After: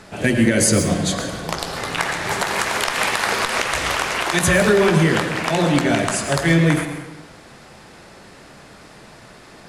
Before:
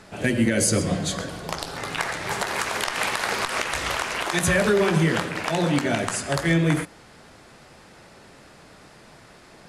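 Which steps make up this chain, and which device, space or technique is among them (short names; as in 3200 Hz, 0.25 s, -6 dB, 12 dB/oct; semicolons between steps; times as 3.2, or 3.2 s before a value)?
saturated reverb return (on a send at -6 dB: reverb RT60 0.90 s, pre-delay 0.1 s + soft clip -20 dBFS, distortion -12 dB); on the sum: gain +4.5 dB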